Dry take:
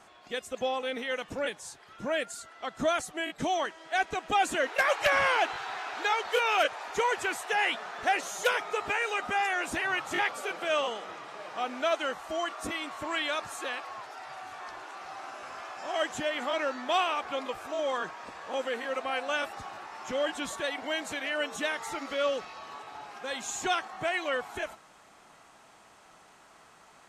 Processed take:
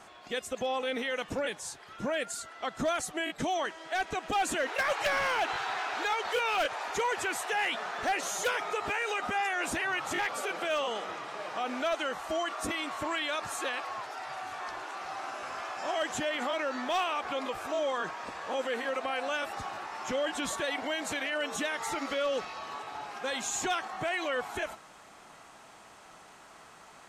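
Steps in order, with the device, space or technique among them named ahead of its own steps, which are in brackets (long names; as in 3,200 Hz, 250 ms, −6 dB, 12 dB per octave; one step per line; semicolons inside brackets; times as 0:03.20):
clipper into limiter (hard clipping −21 dBFS, distortion −18 dB; brickwall limiter −27 dBFS, peak gain reduction 6 dB)
level +3.5 dB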